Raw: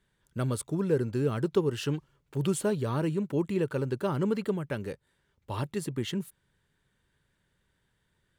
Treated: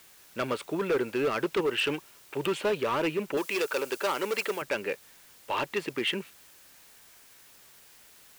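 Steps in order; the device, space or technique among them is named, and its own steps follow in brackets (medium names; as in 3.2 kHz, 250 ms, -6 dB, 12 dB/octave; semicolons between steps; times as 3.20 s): drive-through speaker (band-pass 460–3000 Hz; peaking EQ 2.5 kHz +11 dB 0.54 oct; hard clipper -31 dBFS, distortion -9 dB; white noise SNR 24 dB); 3.37–4.62 s: tone controls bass -15 dB, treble +9 dB; trim +8.5 dB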